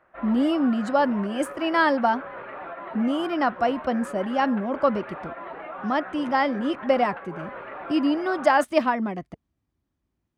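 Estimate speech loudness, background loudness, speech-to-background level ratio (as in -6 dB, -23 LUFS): -24.0 LUFS, -37.5 LUFS, 13.5 dB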